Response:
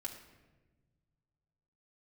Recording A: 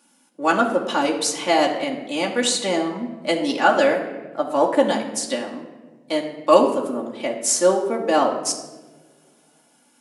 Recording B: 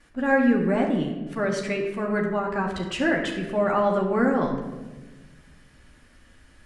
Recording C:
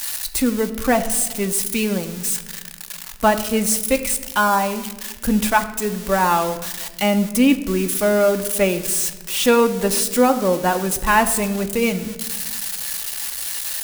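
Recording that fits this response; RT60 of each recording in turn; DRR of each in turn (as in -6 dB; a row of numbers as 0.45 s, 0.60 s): A; 1.3 s, 1.2 s, no single decay rate; -1.5 dB, -11.0 dB, 6.0 dB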